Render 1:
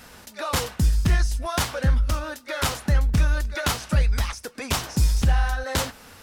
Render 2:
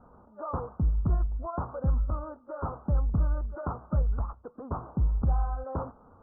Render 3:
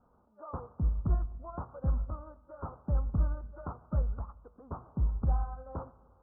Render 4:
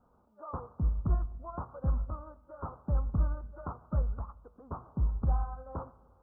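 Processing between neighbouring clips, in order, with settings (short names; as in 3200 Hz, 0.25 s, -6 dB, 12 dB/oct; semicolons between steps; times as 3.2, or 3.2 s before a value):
steep low-pass 1300 Hz 72 dB/oct; gain -6 dB
reverb RT60 1.9 s, pre-delay 60 ms, DRR 16 dB; upward expander 1.5:1, over -40 dBFS; gain -2 dB
dynamic EQ 1100 Hz, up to +3 dB, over -56 dBFS, Q 2.7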